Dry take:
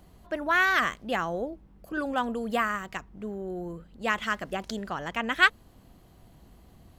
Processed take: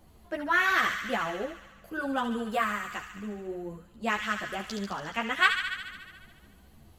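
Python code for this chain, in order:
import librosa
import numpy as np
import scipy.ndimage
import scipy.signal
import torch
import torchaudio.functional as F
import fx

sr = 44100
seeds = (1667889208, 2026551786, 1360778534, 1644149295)

p1 = fx.peak_eq(x, sr, hz=11000.0, db=2.0, octaves=0.77)
p2 = p1 + fx.echo_wet_highpass(p1, sr, ms=71, feedback_pct=73, hz=1700.0, wet_db=-5, dry=0)
p3 = fx.ensemble(p2, sr)
y = p3 * 10.0 ** (1.0 / 20.0)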